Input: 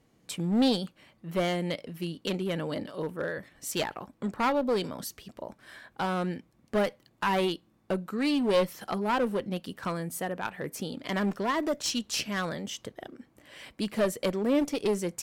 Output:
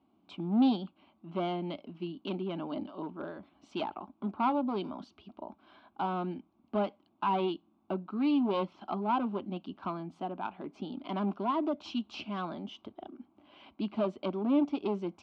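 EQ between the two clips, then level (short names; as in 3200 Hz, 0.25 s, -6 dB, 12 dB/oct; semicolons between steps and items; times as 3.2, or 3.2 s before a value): HPF 78 Hz 24 dB/oct; LPF 3000 Hz 24 dB/oct; fixed phaser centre 490 Hz, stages 6; 0.0 dB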